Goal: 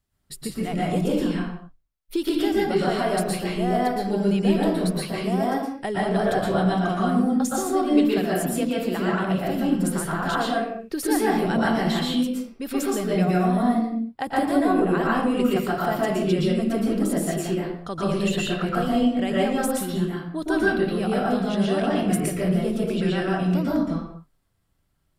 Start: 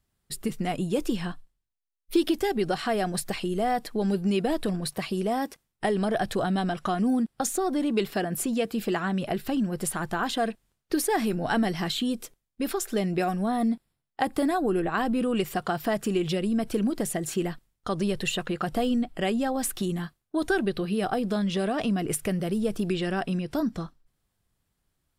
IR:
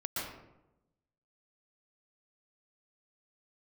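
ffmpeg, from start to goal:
-filter_complex "[1:a]atrim=start_sample=2205,afade=t=out:st=0.43:d=0.01,atrim=end_sample=19404[s0];[0:a][s0]afir=irnorm=-1:irlink=0"

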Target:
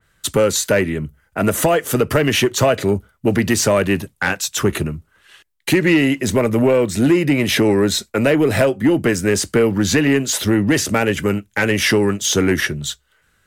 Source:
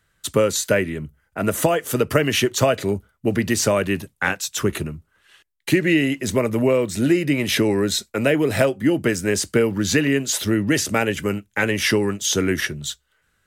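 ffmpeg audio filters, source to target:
-filter_complex "[0:a]asplit=2[s0][s1];[s1]alimiter=limit=0.299:level=0:latency=1:release=98,volume=1[s2];[s0][s2]amix=inputs=2:normalize=0,asoftclip=type=tanh:threshold=0.501,adynamicequalizer=threshold=0.0251:dfrequency=2500:dqfactor=0.7:tfrequency=2500:tqfactor=0.7:attack=5:release=100:ratio=0.375:range=1.5:mode=cutabove:tftype=highshelf"

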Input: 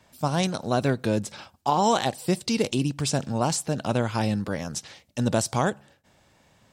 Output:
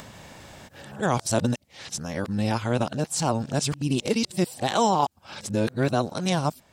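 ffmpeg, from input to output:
-af "areverse,acompressor=mode=upward:threshold=0.0282:ratio=2.5"

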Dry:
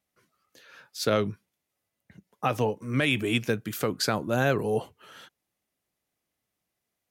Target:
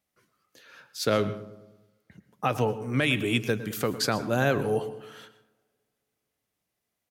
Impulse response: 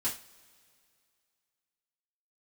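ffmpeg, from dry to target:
-filter_complex "[0:a]asplit=2[s0][s1];[s1]adelay=106,lowpass=f=1600:p=1,volume=0.2,asplit=2[s2][s3];[s3]adelay=106,lowpass=f=1600:p=1,volume=0.55,asplit=2[s4][s5];[s5]adelay=106,lowpass=f=1600:p=1,volume=0.55,asplit=2[s6][s7];[s7]adelay=106,lowpass=f=1600:p=1,volume=0.55,asplit=2[s8][s9];[s9]adelay=106,lowpass=f=1600:p=1,volume=0.55,asplit=2[s10][s11];[s11]adelay=106,lowpass=f=1600:p=1,volume=0.55[s12];[s0][s2][s4][s6][s8][s10][s12]amix=inputs=7:normalize=0,asplit=2[s13][s14];[1:a]atrim=start_sample=2205,adelay=113[s15];[s14][s15]afir=irnorm=-1:irlink=0,volume=0.0944[s16];[s13][s16]amix=inputs=2:normalize=0"

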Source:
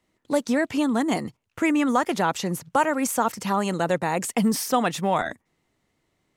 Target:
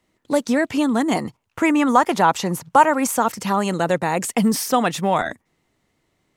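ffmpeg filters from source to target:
-filter_complex "[0:a]asettb=1/sr,asplit=3[s0][s1][s2];[s0]atrim=end=1.154[s3];[s1]atrim=start=1.15:end=3.15,asetpts=PTS-STARTPTS,afade=t=in:d=0.004:c=qsin,afade=t=out:st=1.996:d=0.004:c=qsin,equalizer=f=940:w=1.7:g=6[s4];[s2]atrim=start=3.146[s5];[s3][s4]acrossfade=d=0.004:c1=hsin:c2=qsin[s6];[s6][s5]acrossfade=d=0.004:c1=qsin:c2=hsin,volume=1.5"

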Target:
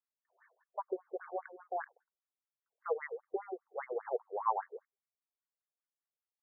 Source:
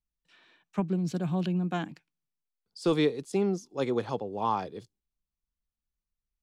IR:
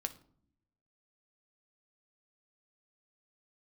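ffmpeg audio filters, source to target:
-filter_complex "[0:a]asettb=1/sr,asplit=3[s0][s1][s2];[s0]atrim=end=0.854[s3];[s1]atrim=start=0.85:end=1.5,asetpts=PTS-STARTPTS,afade=t=in:d=0.004:c=qsin,afade=t=out:st=0.646:d=0.004:c=qsin,equalizer=f=360:t=o:w=1.3:g=4[s4];[s2]atrim=start=1.496[s5];[s3][s4]acrossfade=d=0.004:c1=hsin:c2=qsin[s6];[s6][s5]acrossfade=d=0.004:c1=qsin:c2=hsin,afftfilt=real='re*between(b*sr/1024,510*pow(1600/510,0.5+0.5*sin(2*PI*5*pts/sr))/1.41,510*pow(1600/510,0.5+0.5*sin(2*PI*5*pts/sr))*1.41)':imag='im*between(b*sr/1024,510*pow(1600/510,0.5+0.5*sin(2*PI*5*pts/sr))/1.41,510*pow(1600/510,0.5+0.5*sin(2*PI*5*pts/sr))*1.41)':win_size=1024:overlap=0.75"

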